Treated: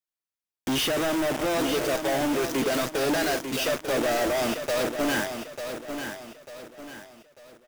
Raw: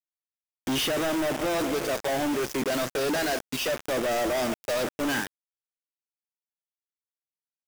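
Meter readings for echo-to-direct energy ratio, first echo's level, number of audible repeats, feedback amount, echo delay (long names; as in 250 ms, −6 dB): −7.5 dB, −8.0 dB, 4, 39%, 895 ms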